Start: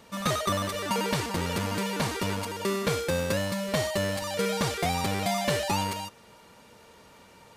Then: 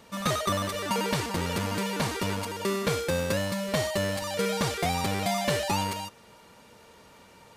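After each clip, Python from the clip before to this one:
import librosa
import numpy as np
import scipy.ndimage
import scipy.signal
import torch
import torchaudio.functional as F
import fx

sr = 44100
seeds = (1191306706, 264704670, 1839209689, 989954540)

y = x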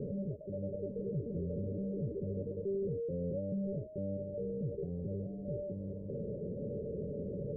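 y = np.sign(x) * np.sqrt(np.mean(np.square(x)))
y = scipy.signal.sosfilt(scipy.signal.cheby1(6, 9, 590.0, 'lowpass', fs=sr, output='sos'), y)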